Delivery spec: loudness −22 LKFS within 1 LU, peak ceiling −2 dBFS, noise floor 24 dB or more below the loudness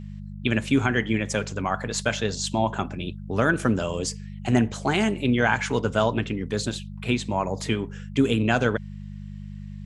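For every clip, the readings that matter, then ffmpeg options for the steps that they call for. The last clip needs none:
mains hum 50 Hz; hum harmonics up to 200 Hz; level of the hum −35 dBFS; integrated loudness −25.0 LKFS; sample peak −7.0 dBFS; target loudness −22.0 LKFS
→ -af "bandreject=frequency=50:width_type=h:width=4,bandreject=frequency=100:width_type=h:width=4,bandreject=frequency=150:width_type=h:width=4,bandreject=frequency=200:width_type=h:width=4"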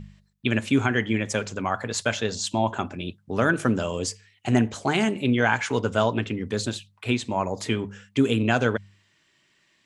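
mains hum none found; integrated loudness −25.5 LKFS; sample peak −7.0 dBFS; target loudness −22.0 LKFS
→ -af "volume=3.5dB"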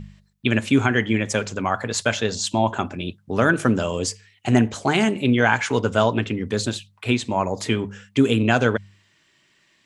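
integrated loudness −22.0 LKFS; sample peak −3.5 dBFS; background noise floor −62 dBFS

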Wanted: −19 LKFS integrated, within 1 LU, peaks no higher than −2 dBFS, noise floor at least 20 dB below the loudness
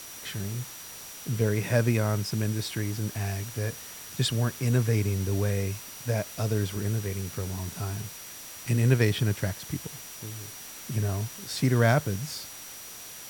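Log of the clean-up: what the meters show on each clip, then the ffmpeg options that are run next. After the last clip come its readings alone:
interfering tone 5,800 Hz; level of the tone −47 dBFS; background noise floor −43 dBFS; target noise floor −49 dBFS; integrated loudness −29.0 LKFS; sample peak −9.0 dBFS; target loudness −19.0 LKFS
→ -af "bandreject=frequency=5800:width=30"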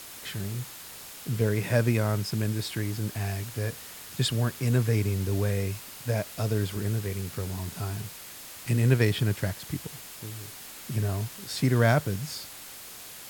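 interfering tone none found; background noise floor −44 dBFS; target noise floor −49 dBFS
→ -af "afftdn=noise_reduction=6:noise_floor=-44"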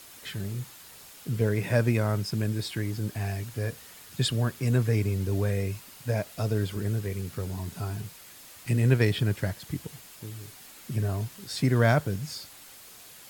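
background noise floor −49 dBFS; integrated loudness −28.5 LKFS; sample peak −9.0 dBFS; target loudness −19.0 LKFS
→ -af "volume=9.5dB,alimiter=limit=-2dB:level=0:latency=1"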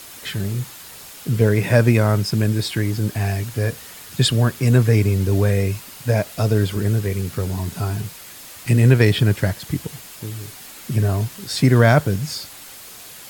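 integrated loudness −19.5 LKFS; sample peak −2.0 dBFS; background noise floor −40 dBFS

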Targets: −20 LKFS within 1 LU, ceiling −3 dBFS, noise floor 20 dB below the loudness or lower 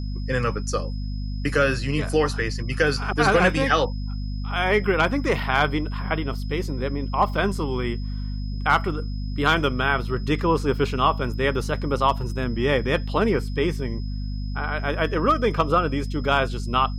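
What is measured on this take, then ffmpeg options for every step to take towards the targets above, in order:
mains hum 50 Hz; hum harmonics up to 250 Hz; level of the hum −26 dBFS; interfering tone 5,100 Hz; level of the tone −46 dBFS; integrated loudness −23.5 LKFS; sample peak −5.5 dBFS; target loudness −20.0 LKFS
→ -af "bandreject=frequency=50:width_type=h:width=6,bandreject=frequency=100:width_type=h:width=6,bandreject=frequency=150:width_type=h:width=6,bandreject=frequency=200:width_type=h:width=6,bandreject=frequency=250:width_type=h:width=6"
-af "bandreject=frequency=5100:width=30"
-af "volume=3.5dB,alimiter=limit=-3dB:level=0:latency=1"

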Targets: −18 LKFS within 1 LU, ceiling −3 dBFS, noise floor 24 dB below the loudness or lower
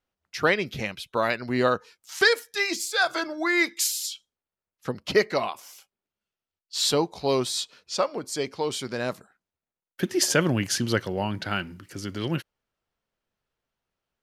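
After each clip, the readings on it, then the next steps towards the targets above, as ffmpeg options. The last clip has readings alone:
integrated loudness −26.0 LKFS; sample peak −8.0 dBFS; target loudness −18.0 LKFS
→ -af "volume=8dB,alimiter=limit=-3dB:level=0:latency=1"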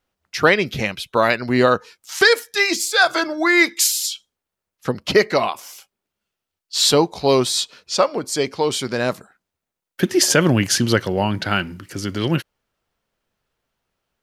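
integrated loudness −18.5 LKFS; sample peak −3.0 dBFS; background noise floor −84 dBFS

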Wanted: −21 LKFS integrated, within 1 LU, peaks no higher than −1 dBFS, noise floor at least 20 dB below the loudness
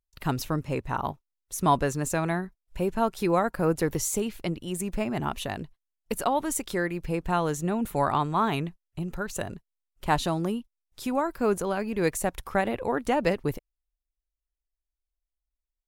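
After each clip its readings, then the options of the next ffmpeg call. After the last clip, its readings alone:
integrated loudness −28.5 LKFS; sample peak −9.0 dBFS; target loudness −21.0 LKFS
→ -af "volume=7.5dB"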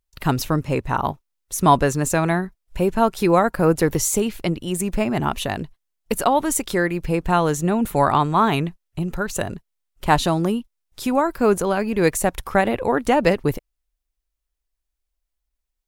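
integrated loudness −21.0 LKFS; sample peak −1.5 dBFS; background noise floor −79 dBFS

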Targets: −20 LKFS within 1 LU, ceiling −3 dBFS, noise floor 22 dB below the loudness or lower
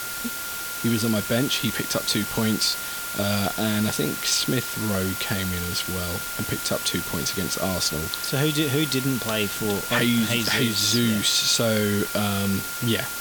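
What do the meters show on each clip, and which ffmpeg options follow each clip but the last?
interfering tone 1,400 Hz; level of the tone −34 dBFS; background noise floor −31 dBFS; target noise floor −45 dBFS; integrated loudness −23.0 LKFS; sample peak −8.5 dBFS; target loudness −20.0 LKFS
→ -af "bandreject=frequency=1400:width=30"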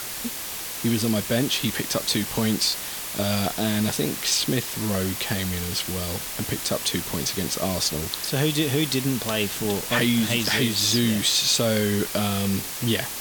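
interfering tone none found; background noise floor −33 dBFS; target noise floor −46 dBFS
→ -af "afftdn=noise_reduction=13:noise_floor=-33"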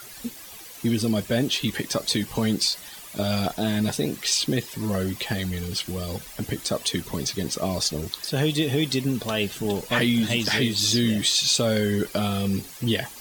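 background noise floor −42 dBFS; target noise floor −47 dBFS
→ -af "afftdn=noise_reduction=6:noise_floor=-42"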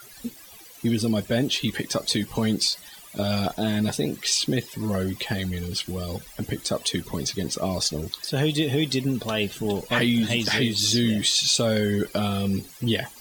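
background noise floor −46 dBFS; target noise floor −47 dBFS
→ -af "afftdn=noise_reduction=6:noise_floor=-46"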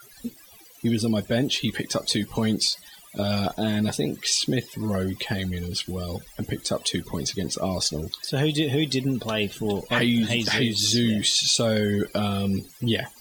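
background noise floor −49 dBFS; integrated loudness −24.5 LKFS; sample peak −9.0 dBFS; target loudness −20.0 LKFS
→ -af "volume=4.5dB"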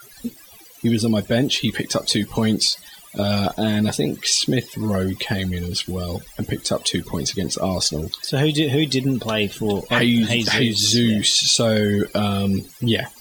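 integrated loudness −20.0 LKFS; sample peak −4.5 dBFS; background noise floor −45 dBFS

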